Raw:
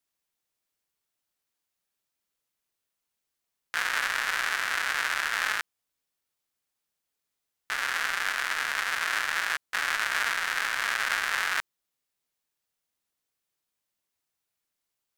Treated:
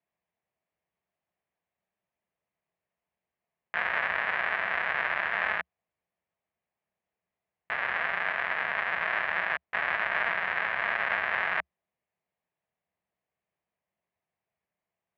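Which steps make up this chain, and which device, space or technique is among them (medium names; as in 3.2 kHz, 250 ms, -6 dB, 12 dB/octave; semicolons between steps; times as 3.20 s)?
bass cabinet (cabinet simulation 67–2300 Hz, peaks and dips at 70 Hz +6 dB, 180 Hz +7 dB, 280 Hz -6 dB, 660 Hz +7 dB, 1.4 kHz -8 dB); trim +3 dB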